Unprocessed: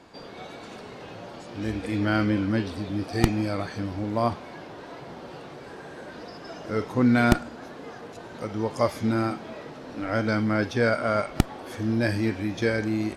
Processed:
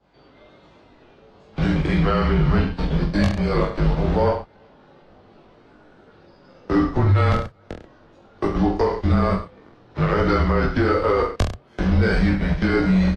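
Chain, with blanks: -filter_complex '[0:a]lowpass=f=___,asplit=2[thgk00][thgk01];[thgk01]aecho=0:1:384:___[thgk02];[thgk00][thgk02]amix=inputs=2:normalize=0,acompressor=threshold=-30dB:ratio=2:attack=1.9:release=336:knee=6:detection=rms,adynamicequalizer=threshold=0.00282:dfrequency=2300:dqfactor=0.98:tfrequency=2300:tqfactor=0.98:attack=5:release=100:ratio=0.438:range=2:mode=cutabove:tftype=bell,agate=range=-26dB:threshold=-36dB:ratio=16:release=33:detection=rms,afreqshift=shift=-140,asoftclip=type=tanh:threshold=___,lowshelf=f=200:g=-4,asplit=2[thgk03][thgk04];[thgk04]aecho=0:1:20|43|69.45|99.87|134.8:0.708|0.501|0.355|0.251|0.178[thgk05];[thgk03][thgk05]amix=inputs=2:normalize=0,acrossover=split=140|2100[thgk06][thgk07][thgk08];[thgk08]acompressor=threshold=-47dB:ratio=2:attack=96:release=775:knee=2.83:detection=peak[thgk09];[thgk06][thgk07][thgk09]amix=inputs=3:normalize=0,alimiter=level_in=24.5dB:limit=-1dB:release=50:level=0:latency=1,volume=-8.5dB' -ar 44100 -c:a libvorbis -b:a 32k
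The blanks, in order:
3700, 0.0794, -22dB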